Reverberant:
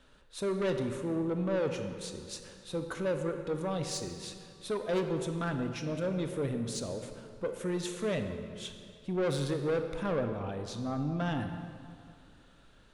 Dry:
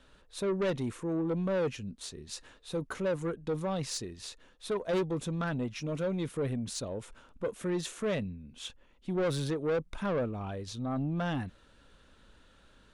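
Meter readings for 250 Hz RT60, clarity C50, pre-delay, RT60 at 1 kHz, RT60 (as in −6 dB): 2.4 s, 6.5 dB, 25 ms, 2.4 s, 2.4 s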